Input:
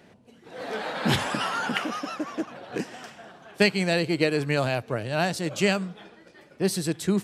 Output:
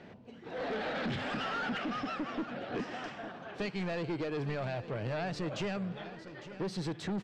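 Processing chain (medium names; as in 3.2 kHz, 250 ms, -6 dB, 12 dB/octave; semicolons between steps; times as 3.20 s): 0.69–2.74 s: graphic EQ with 31 bands 250 Hz +5 dB, 1 kHz -11 dB, 6.3 kHz -6 dB, 12.5 kHz -9 dB; compression, threshold -28 dBFS, peak gain reduction 12.5 dB; saturation -33.5 dBFS, distortion -8 dB; distance through air 160 m; delay 855 ms -14 dB; trim +3 dB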